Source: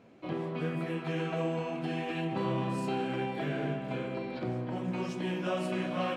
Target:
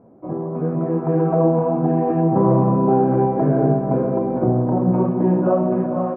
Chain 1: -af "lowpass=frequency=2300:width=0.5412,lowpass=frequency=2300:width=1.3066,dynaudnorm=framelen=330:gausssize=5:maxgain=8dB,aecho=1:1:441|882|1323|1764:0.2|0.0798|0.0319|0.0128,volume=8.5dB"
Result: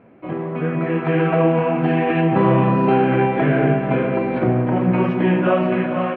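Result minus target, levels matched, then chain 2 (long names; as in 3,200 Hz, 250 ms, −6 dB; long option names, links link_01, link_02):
2,000 Hz band +17.5 dB
-af "lowpass=frequency=990:width=0.5412,lowpass=frequency=990:width=1.3066,dynaudnorm=framelen=330:gausssize=5:maxgain=8dB,aecho=1:1:441|882|1323|1764:0.2|0.0798|0.0319|0.0128,volume=8.5dB"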